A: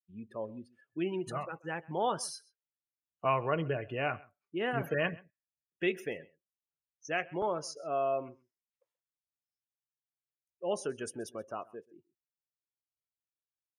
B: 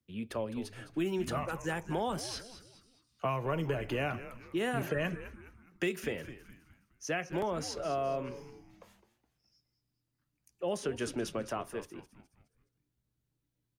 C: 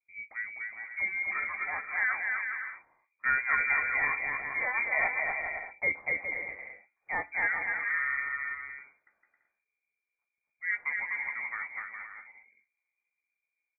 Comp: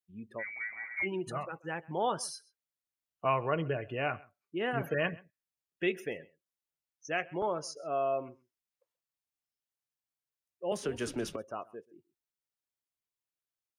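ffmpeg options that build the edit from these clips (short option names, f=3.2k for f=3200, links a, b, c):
-filter_complex "[0:a]asplit=3[a][b][c];[a]atrim=end=0.44[d];[2:a]atrim=start=0.38:end=1.08[e];[b]atrim=start=1.02:end=10.722[f];[1:a]atrim=start=10.718:end=11.362[g];[c]atrim=start=11.358[h];[d][e]acrossfade=d=0.06:c1=tri:c2=tri[i];[i][f]acrossfade=d=0.06:c1=tri:c2=tri[j];[j][g]acrossfade=d=0.004:c1=hsin:c2=hsin[k];[k][h]acrossfade=d=0.004:c1=hsin:c2=hsin"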